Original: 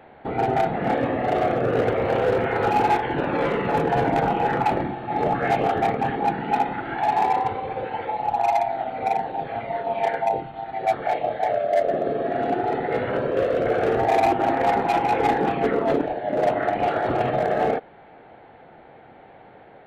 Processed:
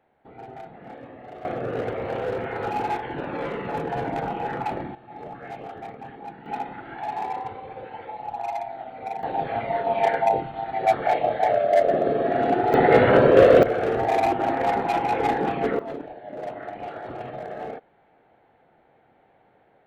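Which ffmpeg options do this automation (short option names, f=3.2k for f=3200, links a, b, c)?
-af "asetnsamples=n=441:p=0,asendcmd='1.45 volume volume -7dB;4.95 volume volume -16dB;6.46 volume volume -9dB;9.23 volume volume 2dB;12.74 volume volume 9dB;13.63 volume volume -2.5dB;15.79 volume volume -12.5dB',volume=-19dB"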